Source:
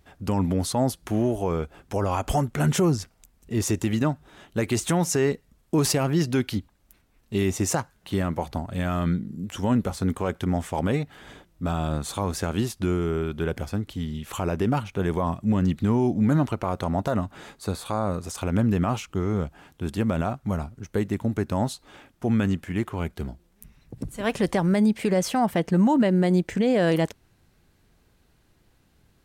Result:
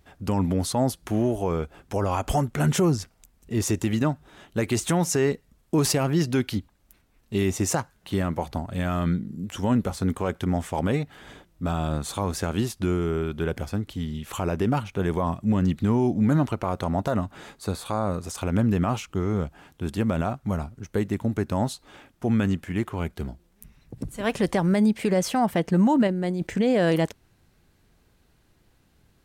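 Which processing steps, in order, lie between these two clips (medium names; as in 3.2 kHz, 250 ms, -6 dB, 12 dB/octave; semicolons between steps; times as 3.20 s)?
26.07–26.47 s: compressor with a negative ratio -26 dBFS, ratio -1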